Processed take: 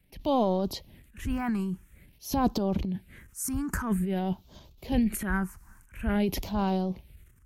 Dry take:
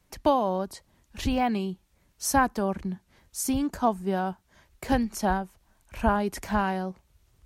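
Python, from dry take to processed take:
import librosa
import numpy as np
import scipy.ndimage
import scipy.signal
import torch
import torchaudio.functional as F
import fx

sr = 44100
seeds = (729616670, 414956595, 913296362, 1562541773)

y = fx.transient(x, sr, attack_db=-6, sustain_db=11)
y = fx.phaser_stages(y, sr, stages=4, low_hz=560.0, high_hz=1800.0, hz=0.49, feedback_pct=30)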